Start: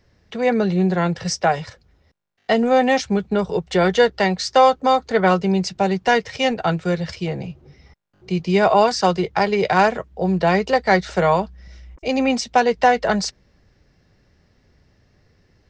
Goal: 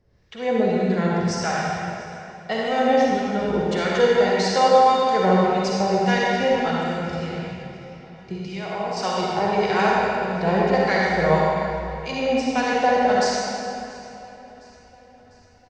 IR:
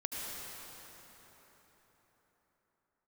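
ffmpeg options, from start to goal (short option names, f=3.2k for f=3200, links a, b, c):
-filter_complex "[0:a]asettb=1/sr,asplit=3[a][b][c];[a]atrim=end=6.834[d];[b]atrim=start=6.83:end=8.97,asetpts=PTS-STARTPTS,afade=t=in:d=0.004:c=qsin,afade=t=out:st=2.136:d=0.004:c=qsin,acompressor=threshold=-22dB:ratio=6[e];[c]atrim=start=8.966[f];[d][e]acrossfade=d=0.004:c1=hsin:c2=qsin[g];[g][f]acrossfade=d=0.004:c1=qsin:c2=hsin,acrossover=split=1000[h][i];[h]aeval=exprs='val(0)*(1-0.7/2+0.7/2*cos(2*PI*1.7*n/s))':c=same[j];[i]aeval=exprs='val(0)*(1-0.7/2-0.7/2*cos(2*PI*1.7*n/s))':c=same[k];[j][k]amix=inputs=2:normalize=0,aecho=1:1:698|1396|2094|2792:0.0891|0.0455|0.0232|0.0118[l];[1:a]atrim=start_sample=2205,asetrate=79380,aresample=44100[m];[l][m]afir=irnorm=-1:irlink=0,volume=3.5dB"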